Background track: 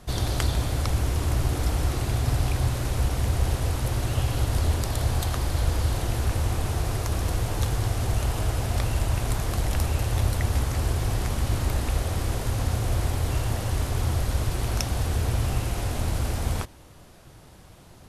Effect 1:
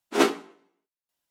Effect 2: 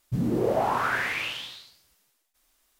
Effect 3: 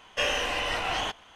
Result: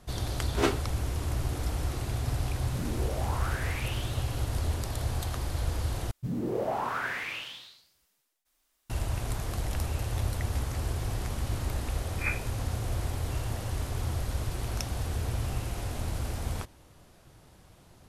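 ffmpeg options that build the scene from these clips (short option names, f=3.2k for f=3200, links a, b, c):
-filter_complex "[1:a]asplit=2[a][b];[2:a]asplit=2[c][d];[0:a]volume=-6.5dB[e];[c]alimiter=limit=-22.5dB:level=0:latency=1:release=187[f];[b]lowpass=f=2.4k:t=q:w=0.5098,lowpass=f=2.4k:t=q:w=0.6013,lowpass=f=2.4k:t=q:w=0.9,lowpass=f=2.4k:t=q:w=2.563,afreqshift=-2800[g];[e]asplit=2[h][i];[h]atrim=end=6.114[j];[d]atrim=end=2.79,asetpts=PTS-STARTPTS,volume=-6dB[k];[i]atrim=start=8.896[l];[a]atrim=end=1.3,asetpts=PTS-STARTPTS,volume=-6dB,afade=t=in:d=0.004:c=hsin,afade=t=out:st=1.296:d=0.004:c=hsin,adelay=430[m];[f]atrim=end=2.79,asetpts=PTS-STARTPTS,volume=-6.5dB,afade=t=in:d=0.004:c=hsin,afade=t=out:st=2.786:d=0.004:c=hsin,adelay=2610[n];[g]atrim=end=1.3,asetpts=PTS-STARTPTS,volume=-12.5dB,afade=t=in:d=0.004:c=hsin,afade=t=out:st=1.296:d=0.004:c=hsin,adelay=12060[o];[j][k]acrossfade=d=0.004:c1=hsin:c2=hsin[p];[p][l]acrossfade=d=0.004:c1=hsin:c2=hsin[q];[q][m][n][o]amix=inputs=4:normalize=0"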